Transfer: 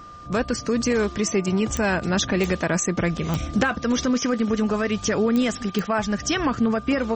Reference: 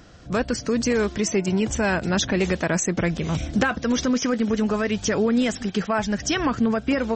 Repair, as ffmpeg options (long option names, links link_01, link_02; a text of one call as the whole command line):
ffmpeg -i in.wav -af "adeclick=threshold=4,bandreject=frequency=1200:width=30" out.wav